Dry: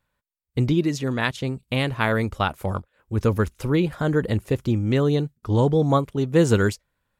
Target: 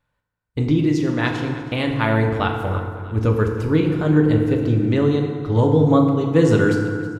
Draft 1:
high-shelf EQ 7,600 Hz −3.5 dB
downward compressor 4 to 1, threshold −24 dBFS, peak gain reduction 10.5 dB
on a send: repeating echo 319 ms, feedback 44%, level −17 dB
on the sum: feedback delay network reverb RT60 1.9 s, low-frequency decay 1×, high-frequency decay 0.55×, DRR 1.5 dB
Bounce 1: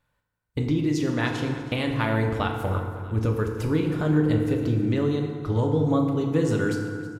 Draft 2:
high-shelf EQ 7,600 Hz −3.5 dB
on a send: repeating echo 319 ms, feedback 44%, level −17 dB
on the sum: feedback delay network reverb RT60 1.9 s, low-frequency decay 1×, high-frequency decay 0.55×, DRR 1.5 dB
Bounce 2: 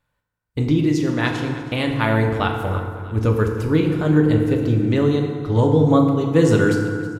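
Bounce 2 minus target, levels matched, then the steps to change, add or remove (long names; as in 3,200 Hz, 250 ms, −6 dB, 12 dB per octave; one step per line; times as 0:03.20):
8,000 Hz band +3.5 dB
change: high-shelf EQ 7,600 Hz −11.5 dB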